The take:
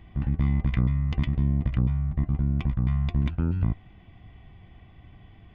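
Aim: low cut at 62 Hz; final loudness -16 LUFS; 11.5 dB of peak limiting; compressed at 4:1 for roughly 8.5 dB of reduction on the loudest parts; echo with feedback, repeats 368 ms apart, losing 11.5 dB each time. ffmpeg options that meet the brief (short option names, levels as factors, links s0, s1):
-af "highpass=62,acompressor=threshold=0.0316:ratio=4,alimiter=level_in=2.37:limit=0.0631:level=0:latency=1,volume=0.422,aecho=1:1:368|736|1104:0.266|0.0718|0.0194,volume=21.1"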